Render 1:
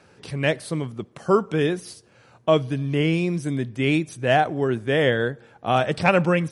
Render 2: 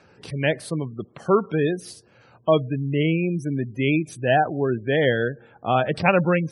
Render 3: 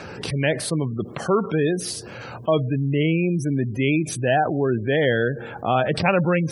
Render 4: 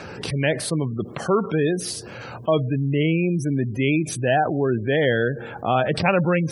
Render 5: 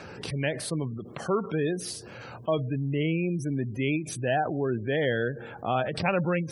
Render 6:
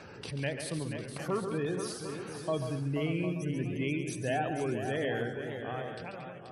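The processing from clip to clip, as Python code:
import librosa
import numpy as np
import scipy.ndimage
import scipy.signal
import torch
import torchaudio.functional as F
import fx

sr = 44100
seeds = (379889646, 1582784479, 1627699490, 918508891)

y1 = fx.spec_gate(x, sr, threshold_db=-25, keep='strong')
y2 = fx.env_flatten(y1, sr, amount_pct=50)
y2 = y2 * 10.0 ** (-2.5 / 20.0)
y3 = y2
y4 = fx.end_taper(y3, sr, db_per_s=150.0)
y4 = y4 * 10.0 ** (-6.5 / 20.0)
y5 = fx.fade_out_tail(y4, sr, length_s=1.74)
y5 = fx.echo_multitap(y5, sr, ms=(73, 138, 229, 482, 752, 880), db=(-20.0, -8.0, -13.5, -8.5, -11.5, -17.0))
y5 = fx.echo_warbled(y5, sr, ms=584, feedback_pct=35, rate_hz=2.8, cents=199, wet_db=-16)
y5 = y5 * 10.0 ** (-6.0 / 20.0)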